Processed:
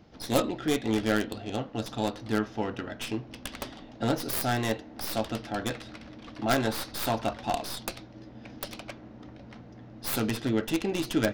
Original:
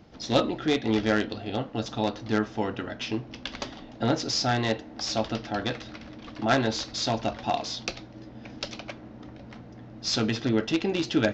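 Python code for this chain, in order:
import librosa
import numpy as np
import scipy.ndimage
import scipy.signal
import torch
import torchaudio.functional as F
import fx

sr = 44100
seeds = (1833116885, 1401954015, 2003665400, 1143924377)

y = fx.tracing_dist(x, sr, depth_ms=0.34)
y = fx.dynamic_eq(y, sr, hz=1200.0, q=1.1, threshold_db=-43.0, ratio=4.0, max_db=5, at=(6.65, 7.34))
y = F.gain(torch.from_numpy(y), -2.5).numpy()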